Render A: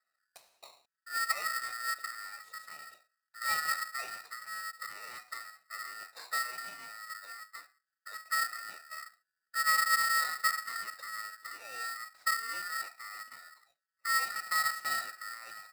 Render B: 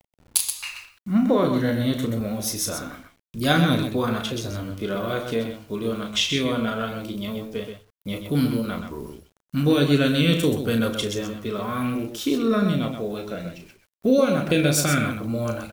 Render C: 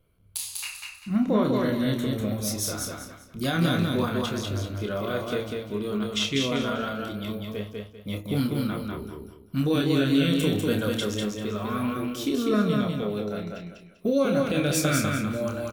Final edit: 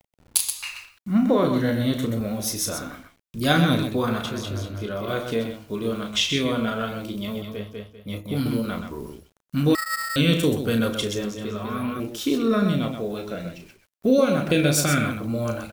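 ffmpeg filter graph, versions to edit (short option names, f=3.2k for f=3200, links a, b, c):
-filter_complex "[2:a]asplit=3[a][b][c];[1:a]asplit=5[d][e][f][g][h];[d]atrim=end=4.252[i];[a]atrim=start=4.248:end=5.082[j];[e]atrim=start=5.078:end=7.422[k];[b]atrim=start=7.418:end=8.462[l];[f]atrim=start=8.458:end=9.752[m];[0:a]atrim=start=9.748:end=10.162[n];[g]atrim=start=10.158:end=11.242[o];[c]atrim=start=11.238:end=12.002[p];[h]atrim=start=11.998[q];[i][j]acrossfade=d=0.004:c1=hsin:c2=hsin[r];[r][k]acrossfade=d=0.004:c1=hsin:c2=hsin[s];[s][l]acrossfade=d=0.004:c1=hsin:c2=hsin[t];[t][m]acrossfade=d=0.004:c1=hsin:c2=hsin[u];[u][n]acrossfade=d=0.004:c1=hsin:c2=hsin[v];[v][o]acrossfade=d=0.004:c1=hsin:c2=hsin[w];[w][p]acrossfade=d=0.004:c1=hsin:c2=hsin[x];[x][q]acrossfade=d=0.004:c1=hsin:c2=hsin"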